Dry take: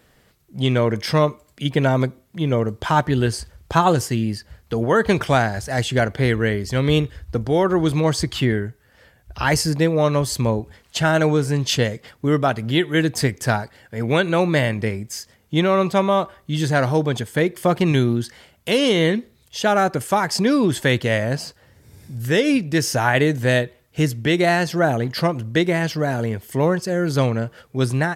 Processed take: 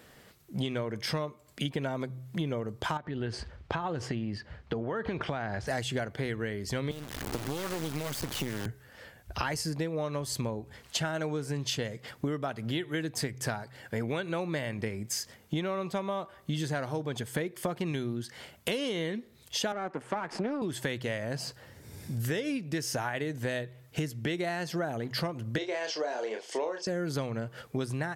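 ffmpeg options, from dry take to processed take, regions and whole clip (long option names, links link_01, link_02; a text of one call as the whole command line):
ffmpeg -i in.wav -filter_complex "[0:a]asettb=1/sr,asplit=3[link_01][link_02][link_03];[link_01]atrim=end=2.974[link_04];[link_02]atrim=start=2.97:end=5.67,asetpts=PTS-STARTPTS,afade=type=in:duration=0.004:curve=qsin,afade=type=out:start_time=2.696:duration=0.004:curve=qsin,lowpass=3200,acompressor=threshold=-23dB:ratio=6:attack=3.2:release=140:knee=1:detection=peak[link_05];[link_03]atrim=start=5.666[link_06];[link_04][link_05]acrossfade=duration=0.004:curve1=hsin:curve2=qsin[link_07];[link_07][link_06]acrossfade=duration=0.004:curve1=qsin:curve2=hsin,asettb=1/sr,asplit=3[link_08][link_09][link_10];[link_08]atrim=end=6.914[link_11];[link_09]atrim=start=6.91:end=8.66,asetpts=PTS-STARTPTS,afade=type=in:duration=0.004:curve=qsin,afade=type=out:start_time=1.746:duration=0.004:curve=qsin,aeval=exprs='val(0)+0.5*0.0398*sgn(val(0))':channel_layout=same,acrossover=split=140|2000[link_12][link_13][link_14];[link_12]acompressor=threshold=-33dB:ratio=4[link_15];[link_13]acompressor=threshold=-29dB:ratio=4[link_16];[link_14]acompressor=threshold=-36dB:ratio=4[link_17];[link_15][link_16][link_17]amix=inputs=3:normalize=0,acrusher=bits=3:dc=4:mix=0:aa=0.000001[link_18];[link_10]atrim=start=8.656[link_19];[link_11][link_18]acrossfade=duration=0.004:curve1=hsin:curve2=qsin[link_20];[link_20][link_19]acrossfade=duration=0.004:curve1=qsin:curve2=hsin,asettb=1/sr,asplit=3[link_21][link_22][link_23];[link_21]atrim=end=19.724[link_24];[link_22]atrim=start=19.72:end=20.62,asetpts=PTS-STARTPTS,afade=type=in:duration=0.004:curve=qsin,afade=type=out:start_time=0.896:duration=0.004:curve=qsin,aeval=exprs='if(lt(val(0),0),0.251*val(0),val(0))':channel_layout=same,lowpass=frequency=9900:width=0.5412,lowpass=frequency=9900:width=1.3066,acrossover=split=160 2400:gain=0.0891 1 0.158[link_25][link_26][link_27];[link_25][link_26][link_27]amix=inputs=3:normalize=0[link_28];[link_23]atrim=start=20.616[link_29];[link_24][link_28]acrossfade=duration=0.004:curve1=hsin:curve2=qsin[link_30];[link_30][link_29]acrossfade=duration=0.004:curve1=qsin:curve2=hsin,asettb=1/sr,asplit=3[link_31][link_32][link_33];[link_31]atrim=end=25.584[link_34];[link_32]atrim=start=25.58:end=26.87,asetpts=PTS-STARTPTS,afade=type=in:duration=0.004:curve=qsin,afade=type=out:start_time=1.286:duration=0.004:curve=qsin,highpass=frequency=400:width=0.5412,highpass=frequency=400:width=1.3066,equalizer=frequency=1300:width_type=q:width=4:gain=-6,equalizer=frequency=1900:width_type=q:width=4:gain=-5,equalizer=frequency=5500:width_type=q:width=4:gain=4,lowpass=frequency=6800:width=0.5412,lowpass=frequency=6800:width=1.3066,asplit=2[link_35][link_36];[link_36]adelay=32,volume=-6dB[link_37];[link_35][link_37]amix=inputs=2:normalize=0,atrim=end_sample=56889[link_38];[link_33]atrim=start=26.866[link_39];[link_34][link_38]acrossfade=duration=0.004:curve1=hsin:curve2=qsin[link_40];[link_40][link_39]acrossfade=duration=0.004:curve1=qsin:curve2=hsin,lowshelf=frequency=60:gain=-11,bandreject=frequency=64.03:width_type=h:width=4,bandreject=frequency=128.06:width_type=h:width=4,acompressor=threshold=-31dB:ratio=16,volume=2dB" out.wav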